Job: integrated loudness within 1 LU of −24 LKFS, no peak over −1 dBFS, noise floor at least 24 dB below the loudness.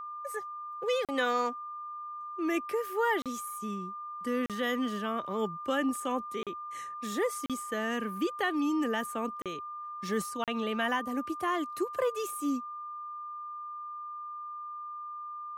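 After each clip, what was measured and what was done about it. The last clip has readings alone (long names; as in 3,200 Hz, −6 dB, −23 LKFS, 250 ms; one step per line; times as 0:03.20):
number of dropouts 7; longest dropout 37 ms; interfering tone 1,200 Hz; level of the tone −38 dBFS; integrated loudness −33.5 LKFS; sample peak −17.5 dBFS; target loudness −24.0 LKFS
→ repair the gap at 0:01.05/0:03.22/0:04.46/0:06.43/0:07.46/0:09.42/0:10.44, 37 ms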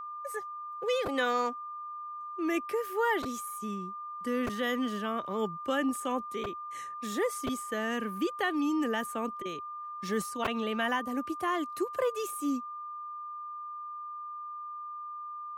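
number of dropouts 0; interfering tone 1,200 Hz; level of the tone −38 dBFS
→ notch filter 1,200 Hz, Q 30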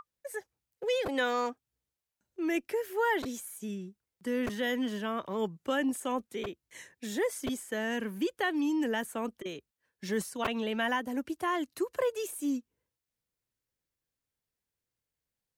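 interfering tone none found; integrated loudness −33.0 LKFS; sample peak −16.0 dBFS; target loudness −24.0 LKFS
→ level +9 dB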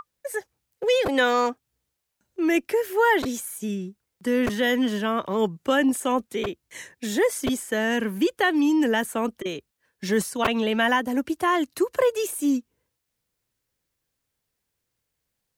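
integrated loudness −24.0 LKFS; sample peak −7.0 dBFS; background noise floor −80 dBFS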